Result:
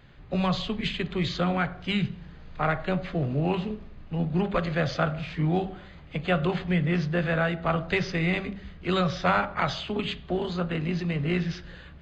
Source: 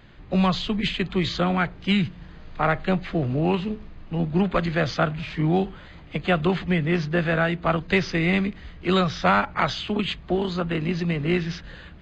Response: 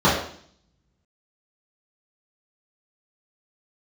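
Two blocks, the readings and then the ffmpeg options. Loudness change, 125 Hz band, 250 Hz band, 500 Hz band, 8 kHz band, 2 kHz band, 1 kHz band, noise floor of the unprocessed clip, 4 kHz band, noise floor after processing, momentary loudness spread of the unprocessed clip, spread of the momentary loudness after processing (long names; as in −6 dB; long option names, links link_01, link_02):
−3.5 dB, −2.5 dB, −4.5 dB, −3.5 dB, can't be measured, −4.0 dB, −4.0 dB, −44 dBFS, −4.0 dB, −46 dBFS, 8 LU, 9 LU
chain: -filter_complex "[0:a]asplit=2[link_01][link_02];[1:a]atrim=start_sample=2205[link_03];[link_02][link_03]afir=irnorm=-1:irlink=0,volume=-33dB[link_04];[link_01][link_04]amix=inputs=2:normalize=0,volume=-4dB"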